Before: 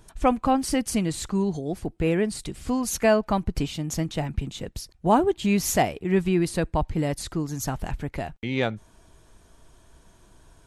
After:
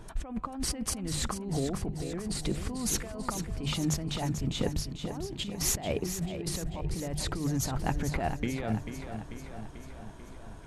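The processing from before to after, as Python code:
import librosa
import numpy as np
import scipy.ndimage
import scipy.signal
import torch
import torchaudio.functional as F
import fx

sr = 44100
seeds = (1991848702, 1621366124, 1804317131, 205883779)

y = fx.high_shelf(x, sr, hz=3200.0, db=-10.5)
y = fx.hum_notches(y, sr, base_hz=50, count=3)
y = fx.over_compress(y, sr, threshold_db=-34.0, ratio=-1.0)
y = fx.echo_feedback(y, sr, ms=441, feedback_pct=60, wet_db=-9)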